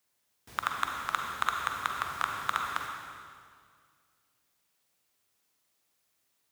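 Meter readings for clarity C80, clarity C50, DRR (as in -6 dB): 3.5 dB, 2.0 dB, 1.5 dB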